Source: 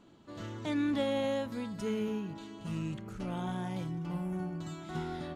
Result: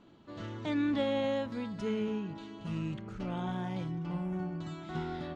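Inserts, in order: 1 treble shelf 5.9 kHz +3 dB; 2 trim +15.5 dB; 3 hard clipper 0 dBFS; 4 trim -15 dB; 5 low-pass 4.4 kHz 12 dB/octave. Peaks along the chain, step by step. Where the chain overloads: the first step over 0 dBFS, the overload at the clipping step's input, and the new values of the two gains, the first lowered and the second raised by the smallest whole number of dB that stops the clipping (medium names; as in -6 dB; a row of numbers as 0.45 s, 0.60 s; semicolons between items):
-20.0 dBFS, -4.5 dBFS, -4.5 dBFS, -19.5 dBFS, -19.5 dBFS; nothing clips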